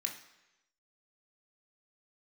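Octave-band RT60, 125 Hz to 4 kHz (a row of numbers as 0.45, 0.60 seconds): 0.90, 0.85, 1.0, 1.0, 1.0, 0.95 seconds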